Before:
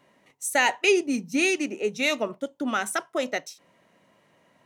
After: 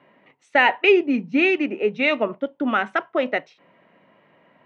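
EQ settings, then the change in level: HPF 130 Hz; LPF 2900 Hz 24 dB/oct; +5.5 dB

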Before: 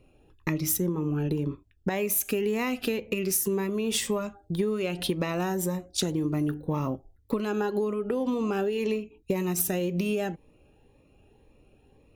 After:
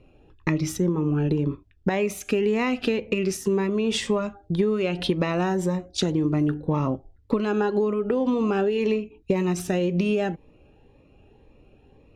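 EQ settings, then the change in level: air absorption 100 m; +5.0 dB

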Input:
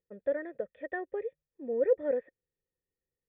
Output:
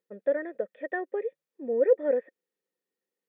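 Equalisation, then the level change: brick-wall FIR high-pass 170 Hz; tone controls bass -2 dB, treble -4 dB; +4.5 dB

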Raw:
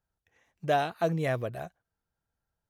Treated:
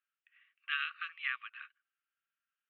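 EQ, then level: brick-wall FIR high-pass 1100 Hz; synth low-pass 2800 Hz, resonance Q 4.4; air absorption 360 m; 0.0 dB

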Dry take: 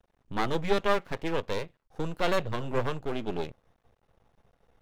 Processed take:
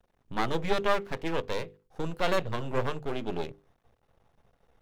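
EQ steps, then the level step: notches 50/100/150/200/250/300/350/400/450/500 Hz; 0.0 dB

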